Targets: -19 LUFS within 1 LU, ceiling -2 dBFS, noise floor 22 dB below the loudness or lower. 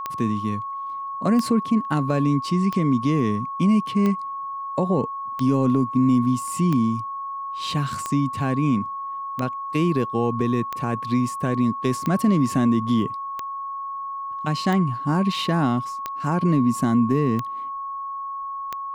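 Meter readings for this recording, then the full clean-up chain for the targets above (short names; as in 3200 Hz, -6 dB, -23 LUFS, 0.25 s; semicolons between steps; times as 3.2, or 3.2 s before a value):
clicks 15; steady tone 1100 Hz; tone level -28 dBFS; loudness -23.0 LUFS; peak -9.0 dBFS; loudness target -19.0 LUFS
-> de-click; notch 1100 Hz, Q 30; gain +4 dB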